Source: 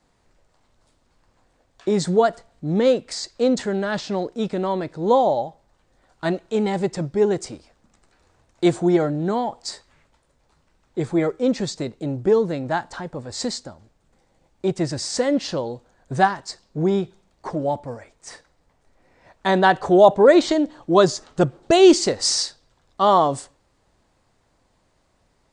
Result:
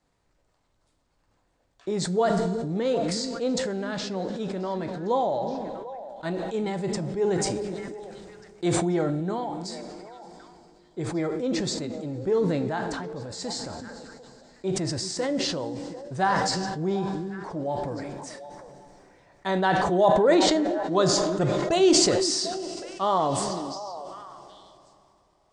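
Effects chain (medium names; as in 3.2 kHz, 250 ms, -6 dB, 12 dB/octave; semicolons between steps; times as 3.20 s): repeats whose band climbs or falls 372 ms, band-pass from 250 Hz, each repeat 1.4 oct, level -9.5 dB; two-slope reverb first 0.43 s, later 4.7 s, from -17 dB, DRR 9.5 dB; decay stretcher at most 22 dB/s; trim -8.5 dB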